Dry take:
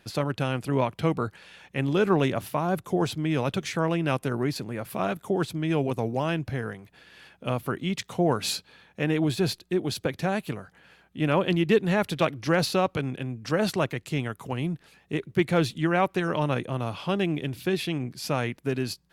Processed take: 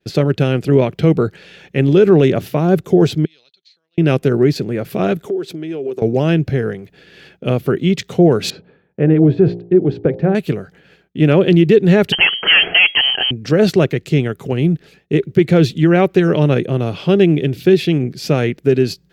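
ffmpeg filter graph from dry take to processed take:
ffmpeg -i in.wav -filter_complex "[0:a]asettb=1/sr,asplit=3[link_01][link_02][link_03];[link_01]atrim=end=3.254[link_04];[link_02]atrim=start=3.25:end=3.98,asetpts=PTS-STARTPTS,afade=type=in:duration=0.004:curve=qsin,afade=type=out:start_time=0.726:duration=0.004:curve=qsin,bandpass=frequency=4200:width_type=q:width=17,acompressor=threshold=-51dB:ratio=5:attack=3.2:release=140:knee=1:detection=peak[link_05];[link_03]atrim=start=3.976[link_06];[link_04][link_05]acrossfade=duration=0.004:curve1=hsin:curve2=qsin[link_07];[link_07][link_06]acrossfade=duration=0.004:curve1=qsin:curve2=hsin,asettb=1/sr,asplit=3[link_08][link_09][link_10];[link_08]atrim=end=5.264[link_11];[link_09]atrim=start=5.26:end=6.02,asetpts=PTS-STARTPTS,afade=type=in:duration=0.004:curve=qsin,afade=type=out:start_time=0.756:duration=0.004:curve=qsin,equalizer=frequency=380:width_type=o:width=0.22:gain=9,acompressor=threshold=-32dB:ratio=10:attack=3.2:release=140:knee=1:detection=peak,highpass=270[link_12];[link_10]atrim=start=6.016[link_13];[link_11][link_12]acrossfade=duration=0.004:curve1=hsin:curve2=qsin[link_14];[link_14][link_13]acrossfade=duration=0.004:curve1=qsin:curve2=hsin,asettb=1/sr,asplit=3[link_15][link_16][link_17];[link_15]atrim=end=8.504[link_18];[link_16]atrim=start=8.5:end=10.35,asetpts=PTS-STARTPTS,afade=type=in:duration=0.004:curve=qsin,afade=type=out:start_time=1.846:duration=0.004:curve=qsin,lowpass=1300,bandreject=frequency=58.06:width_type=h:width=4,bandreject=frequency=116.12:width_type=h:width=4,bandreject=frequency=174.18:width_type=h:width=4,bandreject=frequency=232.24:width_type=h:width=4,bandreject=frequency=290.3:width_type=h:width=4,bandreject=frequency=348.36:width_type=h:width=4,bandreject=frequency=406.42:width_type=h:width=4,bandreject=frequency=464.48:width_type=h:width=4,bandreject=frequency=522.54:width_type=h:width=4,bandreject=frequency=580.6:width_type=h:width=4,bandreject=frequency=638.66:width_type=h:width=4,bandreject=frequency=696.72:width_type=h:width=4,bandreject=frequency=754.78:width_type=h:width=4,bandreject=frequency=812.84:width_type=h:width=4,bandreject=frequency=870.9:width_type=h:width=4,bandreject=frequency=928.96:width_type=h:width=4,bandreject=frequency=987.02:width_type=h:width=4[link_19];[link_17]atrim=start=10.346[link_20];[link_18][link_19]acrossfade=duration=0.004:curve1=hsin:curve2=qsin[link_21];[link_21][link_20]acrossfade=duration=0.004:curve1=qsin:curve2=hsin,asettb=1/sr,asplit=3[link_22][link_23][link_24];[link_22]atrim=end=12.124[link_25];[link_23]atrim=start=12.12:end=13.31,asetpts=PTS-STARTPTS,afade=type=in:duration=0.004:curve=qsin,afade=type=out:start_time=1.186:duration=0.004:curve=qsin,asplit=2[link_26][link_27];[link_27]highpass=frequency=720:poles=1,volume=24dB,asoftclip=type=tanh:threshold=-10dB[link_28];[link_26][link_28]amix=inputs=2:normalize=0,lowpass=frequency=2100:poles=1,volume=-6dB,lowpass=frequency=2800:width_type=q:width=0.5098,lowpass=frequency=2800:width_type=q:width=0.6013,lowpass=frequency=2800:width_type=q:width=0.9,lowpass=frequency=2800:width_type=q:width=2.563,afreqshift=-3300[link_29];[link_24]atrim=start=13.306[link_30];[link_25][link_29]acrossfade=duration=0.004:curve1=hsin:curve2=qsin[link_31];[link_31][link_30]acrossfade=duration=0.004:curve1=qsin:curve2=hsin,agate=range=-33dB:threshold=-51dB:ratio=3:detection=peak,equalizer=frequency=160:width_type=o:width=0.67:gain=6,equalizer=frequency=400:width_type=o:width=0.67:gain=9,equalizer=frequency=1000:width_type=o:width=0.67:gain=-10,equalizer=frequency=10000:width_type=o:width=0.67:gain=-10,alimiter=level_in=10dB:limit=-1dB:release=50:level=0:latency=1,volume=-1dB" out.wav

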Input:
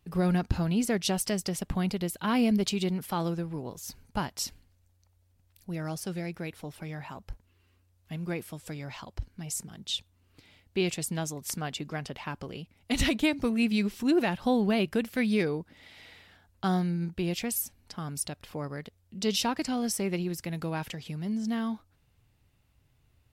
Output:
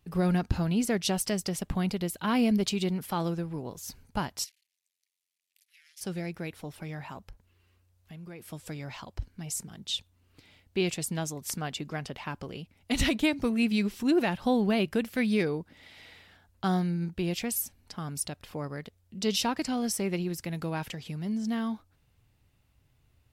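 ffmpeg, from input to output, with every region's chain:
ffmpeg -i in.wav -filter_complex "[0:a]asettb=1/sr,asplit=3[link_01][link_02][link_03];[link_01]atrim=end=4.444[link_04];[link_02]atrim=start=4.44:end=6.01,asetpts=PTS-STARTPTS,afade=type=in:duration=0.004:curve=qsin,afade=type=out:start_time=1.566:duration=0.004:curve=qsin,acompressor=threshold=-36dB:ratio=6:attack=3.2:release=140:knee=1:detection=peak,aeval=exprs='max(val(0),0)':channel_layout=same,asuperpass=centerf=5900:order=12:qfactor=0.52[link_05];[link_03]atrim=start=6.006[link_06];[link_04][link_05]acrossfade=duration=0.004:curve1=hsin:curve2=qsin[link_07];[link_07][link_06]acrossfade=duration=0.004:curve1=qsin:curve2=hsin,asettb=1/sr,asplit=3[link_08][link_09][link_10];[link_08]atrim=end=7.204[link_11];[link_09]atrim=start=7.2:end=8.48,asetpts=PTS-STARTPTS,afade=type=in:duration=0.004:curve=qsin,afade=type=out:start_time=1.276:duration=0.004:curve=qsin,bandreject=frequency=270:width=5.9,acompressor=threshold=-44dB:ratio=3:attack=3.2:release=140:knee=1:detection=peak[link_12];[link_10]atrim=start=8.476[link_13];[link_11][link_12]acrossfade=duration=0.004:curve1=hsin:curve2=qsin[link_14];[link_14][link_13]acrossfade=duration=0.004:curve1=qsin:curve2=hsin" out.wav

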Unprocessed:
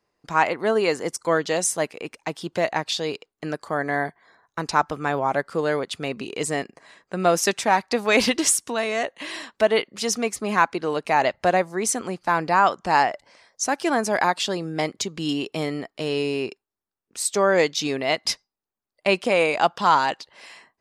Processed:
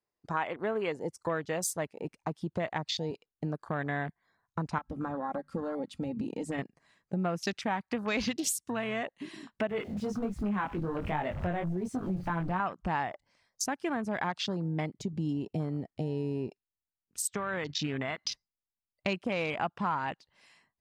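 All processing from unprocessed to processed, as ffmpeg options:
ffmpeg -i in.wav -filter_complex "[0:a]asettb=1/sr,asplit=3[link_01][link_02][link_03];[link_01]atrim=end=4.784[link_04];[link_02]atrim=start=4.78:end=6.59,asetpts=PTS-STARTPTS,afade=type=in:duration=0.004:curve=qsin,afade=type=out:start_time=1.806:duration=0.004:curve=qsin,acompressor=threshold=-26dB:ratio=5:attack=3.2:release=140:knee=1:detection=peak,bandreject=frequency=50:width_type=h:width=6,bandreject=frequency=100:width_type=h:width=6,bandreject=frequency=150:width_type=h:width=6,bandreject=frequency=200:width_type=h:width=6,bandreject=frequency=250:width_type=h:width=6,aecho=1:1:3.7:0.54,atrim=end_sample=79821[link_05];[link_03]atrim=start=6.586[link_06];[link_04][link_05]acrossfade=duration=0.004:curve1=hsin:curve2=qsin[link_07];[link_07][link_06]acrossfade=duration=0.004:curve1=qsin:curve2=hsin,asettb=1/sr,asplit=3[link_08][link_09][link_10];[link_08]atrim=end=9.694[link_11];[link_09]atrim=start=9.69:end=12.6,asetpts=PTS-STARTPTS,afade=type=in:duration=0.004:curve=qsin,afade=type=out:start_time=2.906:duration=0.004:curve=qsin,aeval=exprs='val(0)+0.5*0.0501*sgn(val(0))':channel_layout=same,highshelf=frequency=3200:gain=-7,flanger=delay=19.5:depth=4.6:speed=1.3[link_12];[link_10]atrim=start=12.596[link_13];[link_11][link_12]acrossfade=duration=0.004:curve1=hsin:curve2=qsin[link_14];[link_14][link_13]acrossfade=duration=0.004:curve1=qsin:curve2=hsin,asettb=1/sr,asplit=3[link_15][link_16][link_17];[link_15]atrim=end=17.294[link_18];[link_16]atrim=start=17.29:end=18.32,asetpts=PTS-STARTPTS,afade=type=in:duration=0.004:curve=qsin,afade=type=out:start_time=1.026:duration=0.004:curve=qsin,lowpass=6800,equalizer=frequency=1400:width_type=o:width=1.2:gain=9.5,acompressor=threshold=-21dB:ratio=16:attack=3.2:release=140:knee=1:detection=peak[link_19];[link_17]atrim=start=18.316[link_20];[link_18][link_19]acrossfade=duration=0.004:curve1=hsin:curve2=qsin[link_21];[link_21][link_20]acrossfade=duration=0.004:curve1=qsin:curve2=hsin,afwtdn=0.0282,asubboost=boost=4.5:cutoff=190,acompressor=threshold=-32dB:ratio=3" out.wav

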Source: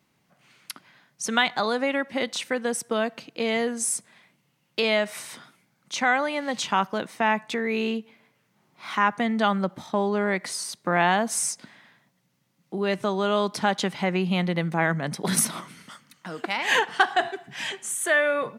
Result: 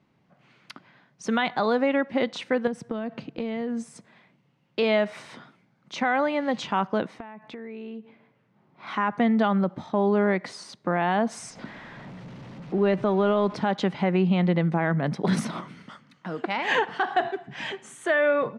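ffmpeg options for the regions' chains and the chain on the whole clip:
ffmpeg -i in.wav -filter_complex "[0:a]asettb=1/sr,asplit=3[link_01][link_02][link_03];[link_01]atrim=end=2.674[link_04];[link_02]atrim=start=2.67:end=3.96,asetpts=PTS-STARTPTS,afade=type=in:duration=0.004:curve=qsin,afade=type=out:start_time=1.286:duration=0.004:curve=qsin,bass=frequency=250:gain=9,treble=frequency=4000:gain=-2,acompressor=threshold=-29dB:ratio=12:attack=3.2:release=140:knee=1:detection=peak[link_05];[link_03]atrim=start=3.956[link_06];[link_04][link_05]acrossfade=duration=0.004:curve1=hsin:curve2=qsin[link_07];[link_07][link_06]acrossfade=duration=0.004:curve1=qsin:curve2=hsin,asettb=1/sr,asplit=3[link_08][link_09][link_10];[link_08]atrim=end=7.184[link_11];[link_09]atrim=start=7.18:end=8.87,asetpts=PTS-STARTPTS,afade=type=in:duration=0.004:curve=qsin,afade=type=out:start_time=1.686:duration=0.004:curve=qsin,lowpass=frequency=3500:poles=1,acompressor=threshold=-37dB:ratio=20:attack=3.2:release=140:knee=1:detection=peak[link_12];[link_10]atrim=start=8.866[link_13];[link_11][link_12]acrossfade=duration=0.004:curve1=hsin:curve2=qsin[link_14];[link_14][link_13]acrossfade=duration=0.004:curve1=qsin:curve2=hsin,asettb=1/sr,asplit=3[link_15][link_16][link_17];[link_15]atrim=end=11.504[link_18];[link_16]atrim=start=11.5:end=13.56,asetpts=PTS-STARTPTS,afade=type=in:duration=0.004:curve=qsin,afade=type=out:start_time=2.056:duration=0.004:curve=qsin,aeval=exprs='val(0)+0.5*0.0133*sgn(val(0))':channel_layout=same,lowpass=frequency=3200:poles=1[link_19];[link_17]atrim=start=13.556[link_20];[link_18][link_19]acrossfade=duration=0.004:curve1=hsin:curve2=qsin[link_21];[link_21][link_20]acrossfade=duration=0.004:curve1=qsin:curve2=hsin,tiltshelf=frequency=1300:gain=4.5,alimiter=limit=-12.5dB:level=0:latency=1:release=69,lowpass=4500" out.wav

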